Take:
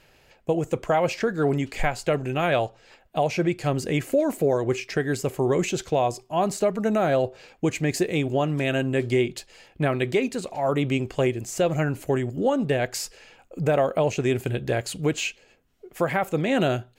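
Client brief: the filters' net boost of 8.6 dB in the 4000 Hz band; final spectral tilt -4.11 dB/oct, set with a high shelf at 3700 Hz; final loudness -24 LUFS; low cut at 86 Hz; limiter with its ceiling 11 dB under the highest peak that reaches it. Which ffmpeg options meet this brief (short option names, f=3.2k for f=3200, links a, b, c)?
-af "highpass=86,highshelf=f=3.7k:g=8,equalizer=f=4k:t=o:g=6.5,volume=4dB,alimiter=limit=-13.5dB:level=0:latency=1"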